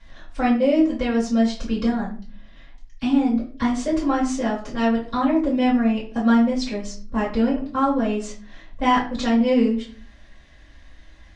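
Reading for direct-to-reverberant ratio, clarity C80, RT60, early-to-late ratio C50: −8.5 dB, 12.5 dB, 0.40 s, 8.0 dB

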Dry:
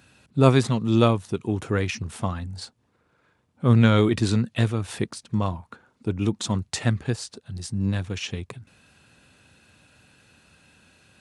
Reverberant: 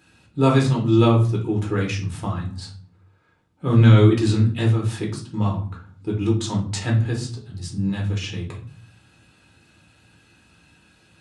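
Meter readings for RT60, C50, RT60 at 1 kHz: 0.45 s, 8.5 dB, 0.45 s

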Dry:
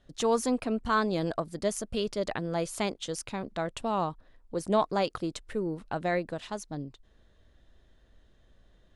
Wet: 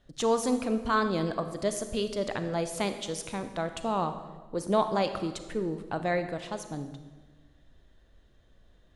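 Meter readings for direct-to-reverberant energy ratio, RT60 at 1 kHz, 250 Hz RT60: 8.5 dB, 1.2 s, 1.5 s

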